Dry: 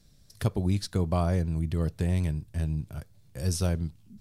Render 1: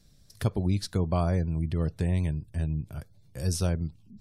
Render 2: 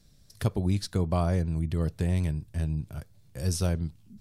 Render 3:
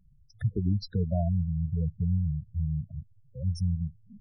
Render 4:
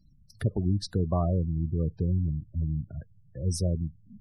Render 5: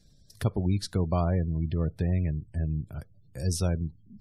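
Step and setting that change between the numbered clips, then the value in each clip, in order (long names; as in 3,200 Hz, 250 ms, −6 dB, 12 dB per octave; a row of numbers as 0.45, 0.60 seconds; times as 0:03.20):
gate on every frequency bin, under each frame's peak: −45, −60, −10, −20, −35 decibels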